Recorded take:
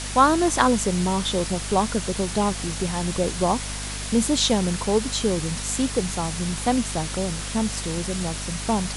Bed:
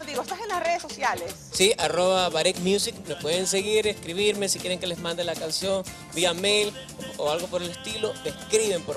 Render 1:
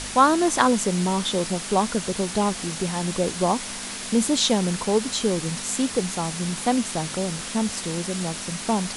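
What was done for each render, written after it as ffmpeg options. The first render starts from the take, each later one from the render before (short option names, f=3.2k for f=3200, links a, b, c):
-af "bandreject=f=50:t=h:w=4,bandreject=f=100:t=h:w=4,bandreject=f=150:t=h:w=4"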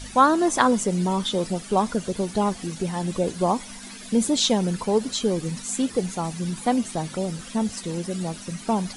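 -af "afftdn=nr=13:nf=-33"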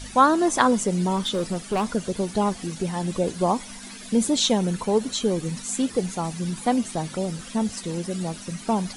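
-filter_complex "[0:a]asettb=1/sr,asplit=3[a][b][c];[a]atrim=end=1.164[d];[b]atrim=start=1.16:end=1.85,asetpts=PTS-STARTPTS,afade=t=in:d=0.004:c=qsin,afade=t=out:st=0.686:d=0.004:c=qsin,asoftclip=type=hard:threshold=-19.5dB[e];[c]atrim=start=1.846[f];[d][e]acrossfade=d=0.004:c1=hsin:c2=qsin[g];[g][f]acrossfade=d=0.004:c1=qsin:c2=hsin,asettb=1/sr,asplit=3[h][i][j];[h]atrim=end=4.394[k];[i]atrim=start=4.39:end=5.51,asetpts=PTS-STARTPTS,afade=t=in:d=0.004:c=qsin,afade=t=out:st=1.116:d=0.004:c=qsin,bandreject=f=4.9k:w=12[l];[j]atrim=start=5.506[m];[k][l]acrossfade=d=0.004:c1=hsin:c2=qsin[n];[n][m]acrossfade=d=0.004:c1=qsin:c2=hsin"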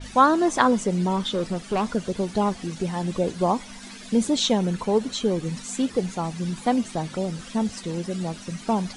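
-af "lowpass=7.7k,adynamicequalizer=threshold=0.00794:dfrequency=4000:dqfactor=0.7:tfrequency=4000:tqfactor=0.7:attack=5:release=100:ratio=0.375:range=2:mode=cutabove:tftype=highshelf"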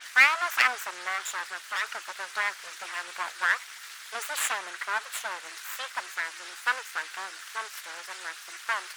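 -af "aeval=exprs='abs(val(0))':c=same,highpass=f=1.5k:t=q:w=2.3"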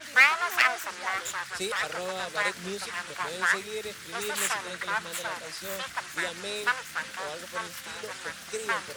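-filter_complex "[1:a]volume=-13.5dB[a];[0:a][a]amix=inputs=2:normalize=0"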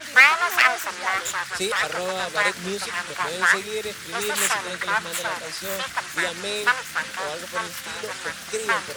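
-af "volume=6.5dB,alimiter=limit=-2dB:level=0:latency=1"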